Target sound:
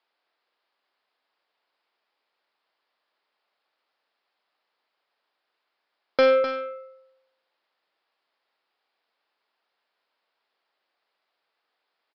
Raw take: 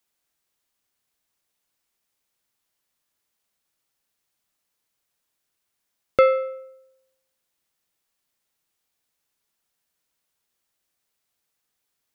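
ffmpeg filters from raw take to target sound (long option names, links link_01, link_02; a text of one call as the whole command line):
ffmpeg -i in.wav -af "highpass=350,equalizer=frequency=840:width=0.42:gain=9,aresample=11025,asoftclip=type=tanh:threshold=-15dB,aresample=44100,aecho=1:1:254:0.335" out.wav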